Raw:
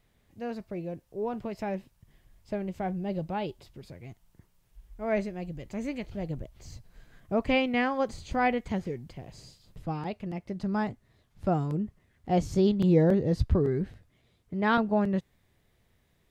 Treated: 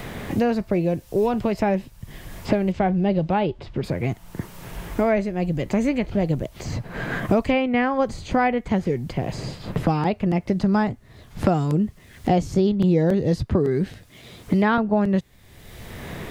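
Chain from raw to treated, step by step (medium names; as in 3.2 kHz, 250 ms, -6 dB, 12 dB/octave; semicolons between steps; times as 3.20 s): 2.72–3.84 s: low-pass 3.9 kHz 12 dB/octave; three bands compressed up and down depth 100%; trim +8 dB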